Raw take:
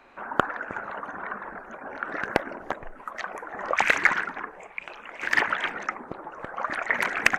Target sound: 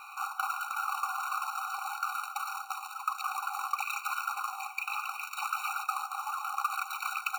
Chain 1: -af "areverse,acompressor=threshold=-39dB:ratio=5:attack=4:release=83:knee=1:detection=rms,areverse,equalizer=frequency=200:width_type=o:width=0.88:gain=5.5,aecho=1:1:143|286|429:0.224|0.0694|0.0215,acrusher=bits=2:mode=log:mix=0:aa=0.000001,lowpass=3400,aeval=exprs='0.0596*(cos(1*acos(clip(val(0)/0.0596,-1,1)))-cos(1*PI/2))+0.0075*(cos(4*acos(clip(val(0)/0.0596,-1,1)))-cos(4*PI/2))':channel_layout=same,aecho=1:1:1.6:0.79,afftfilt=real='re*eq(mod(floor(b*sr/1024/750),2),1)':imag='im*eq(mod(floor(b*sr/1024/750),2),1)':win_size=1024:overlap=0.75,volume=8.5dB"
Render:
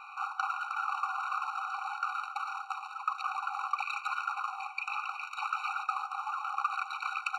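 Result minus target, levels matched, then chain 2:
4,000 Hz band −2.5 dB
-af "areverse,acompressor=threshold=-39dB:ratio=5:attack=4:release=83:knee=1:detection=rms,areverse,equalizer=frequency=200:width_type=o:width=0.88:gain=5.5,aecho=1:1:143|286|429:0.224|0.0694|0.0215,acrusher=bits=2:mode=log:mix=0:aa=0.000001,aeval=exprs='0.0596*(cos(1*acos(clip(val(0)/0.0596,-1,1)))-cos(1*PI/2))+0.0075*(cos(4*acos(clip(val(0)/0.0596,-1,1)))-cos(4*PI/2))':channel_layout=same,aecho=1:1:1.6:0.79,afftfilt=real='re*eq(mod(floor(b*sr/1024/750),2),1)':imag='im*eq(mod(floor(b*sr/1024/750),2),1)':win_size=1024:overlap=0.75,volume=8.5dB"

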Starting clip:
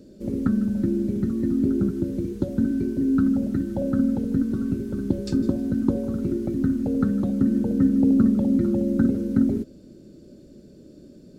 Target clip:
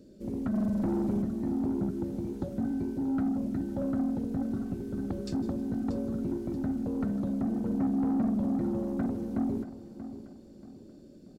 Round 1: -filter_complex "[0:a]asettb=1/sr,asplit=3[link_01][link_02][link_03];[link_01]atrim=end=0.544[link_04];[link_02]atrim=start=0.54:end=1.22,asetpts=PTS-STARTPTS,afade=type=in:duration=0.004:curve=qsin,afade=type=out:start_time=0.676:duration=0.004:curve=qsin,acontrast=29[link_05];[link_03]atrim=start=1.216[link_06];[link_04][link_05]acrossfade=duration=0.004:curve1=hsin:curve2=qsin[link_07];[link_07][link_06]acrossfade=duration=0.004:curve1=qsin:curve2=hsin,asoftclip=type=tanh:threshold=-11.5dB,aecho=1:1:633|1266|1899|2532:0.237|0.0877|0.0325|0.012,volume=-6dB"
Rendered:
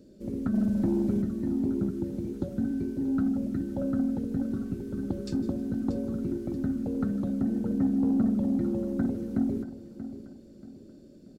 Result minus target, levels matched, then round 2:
soft clipping: distortion −8 dB
-filter_complex "[0:a]asettb=1/sr,asplit=3[link_01][link_02][link_03];[link_01]atrim=end=0.544[link_04];[link_02]atrim=start=0.54:end=1.22,asetpts=PTS-STARTPTS,afade=type=in:duration=0.004:curve=qsin,afade=type=out:start_time=0.676:duration=0.004:curve=qsin,acontrast=29[link_05];[link_03]atrim=start=1.216[link_06];[link_04][link_05]acrossfade=duration=0.004:curve1=hsin:curve2=qsin[link_07];[link_07][link_06]acrossfade=duration=0.004:curve1=qsin:curve2=hsin,asoftclip=type=tanh:threshold=-18.5dB,aecho=1:1:633|1266|1899|2532:0.237|0.0877|0.0325|0.012,volume=-6dB"

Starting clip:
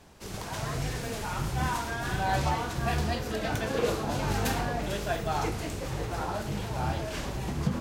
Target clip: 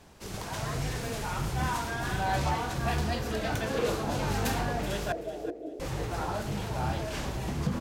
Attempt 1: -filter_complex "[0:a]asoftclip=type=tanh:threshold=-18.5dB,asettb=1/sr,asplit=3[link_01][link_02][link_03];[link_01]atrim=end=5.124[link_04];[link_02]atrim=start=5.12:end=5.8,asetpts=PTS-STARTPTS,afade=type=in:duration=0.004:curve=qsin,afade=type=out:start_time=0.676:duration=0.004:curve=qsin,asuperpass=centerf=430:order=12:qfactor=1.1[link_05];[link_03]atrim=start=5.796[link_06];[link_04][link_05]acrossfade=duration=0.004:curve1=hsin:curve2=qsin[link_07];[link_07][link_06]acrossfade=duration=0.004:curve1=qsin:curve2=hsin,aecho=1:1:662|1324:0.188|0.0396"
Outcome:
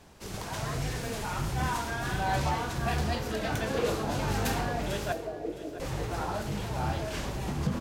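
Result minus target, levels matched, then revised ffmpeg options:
echo 282 ms late
-filter_complex "[0:a]asoftclip=type=tanh:threshold=-18.5dB,asettb=1/sr,asplit=3[link_01][link_02][link_03];[link_01]atrim=end=5.124[link_04];[link_02]atrim=start=5.12:end=5.8,asetpts=PTS-STARTPTS,afade=type=in:duration=0.004:curve=qsin,afade=type=out:start_time=0.676:duration=0.004:curve=qsin,asuperpass=centerf=430:order=12:qfactor=1.1[link_05];[link_03]atrim=start=5.796[link_06];[link_04][link_05]acrossfade=duration=0.004:curve1=hsin:curve2=qsin[link_07];[link_07][link_06]acrossfade=duration=0.004:curve1=qsin:curve2=hsin,aecho=1:1:380|760:0.188|0.0396"

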